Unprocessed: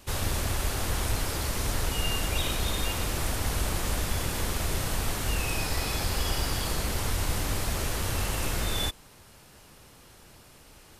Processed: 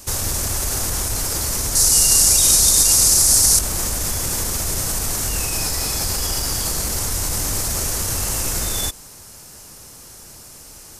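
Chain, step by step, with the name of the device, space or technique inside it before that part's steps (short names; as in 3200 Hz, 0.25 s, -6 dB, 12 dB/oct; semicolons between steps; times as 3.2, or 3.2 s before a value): over-bright horn tweeter (resonant high shelf 4500 Hz +9 dB, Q 1.5; limiter -19.5 dBFS, peak gain reduction 7.5 dB); 1.75–3.59 band shelf 7000 Hz +11.5 dB; gain +7 dB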